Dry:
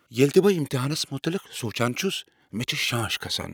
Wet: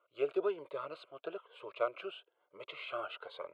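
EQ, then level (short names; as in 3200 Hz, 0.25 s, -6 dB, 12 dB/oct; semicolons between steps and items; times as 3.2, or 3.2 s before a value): ladder band-pass 780 Hz, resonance 45%; fixed phaser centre 1200 Hz, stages 8; +5.5 dB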